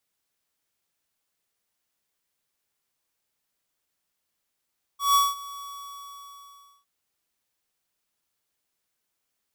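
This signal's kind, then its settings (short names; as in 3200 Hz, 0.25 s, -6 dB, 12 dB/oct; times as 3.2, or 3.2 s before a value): ADSR square 1130 Hz, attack 0.158 s, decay 0.198 s, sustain -20.5 dB, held 0.61 s, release 1.25 s -18 dBFS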